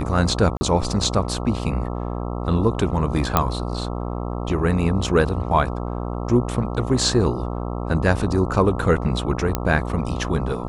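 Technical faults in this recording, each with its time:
mains buzz 60 Hz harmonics 22 −27 dBFS
0:00.57–0:00.61: drop-out 40 ms
0:03.37: click −2 dBFS
0:09.55: click −6 dBFS

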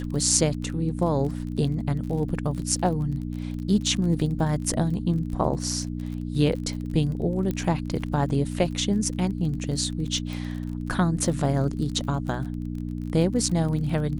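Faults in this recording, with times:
surface crackle 34 per second −33 dBFS
mains hum 60 Hz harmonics 5 −31 dBFS
0:07.51: click −16 dBFS
0:10.33: click

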